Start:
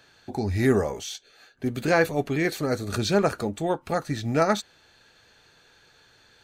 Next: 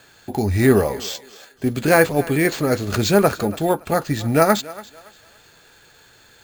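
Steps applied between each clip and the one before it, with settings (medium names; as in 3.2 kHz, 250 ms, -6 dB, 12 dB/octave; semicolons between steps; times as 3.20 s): sample-and-hold 4×; thinning echo 283 ms, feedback 31%, high-pass 340 Hz, level -18 dB; trim +6.5 dB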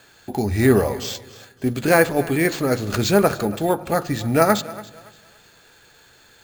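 hum notches 50/100/150 Hz; on a send at -19 dB: reverberation RT60 1.1 s, pre-delay 32 ms; on the sum: trim -1 dB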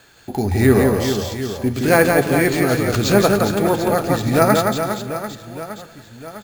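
bass shelf 79 Hz +5 dB; on a send: reverse bouncing-ball echo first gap 170 ms, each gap 1.4×, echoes 5; on the sum: trim +1 dB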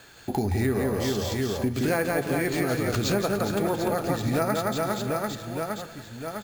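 compression 5:1, threshold -23 dBFS, peak gain reduction 14 dB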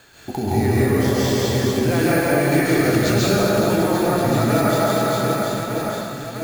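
plate-style reverb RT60 1.5 s, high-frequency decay 0.95×, pre-delay 120 ms, DRR -7 dB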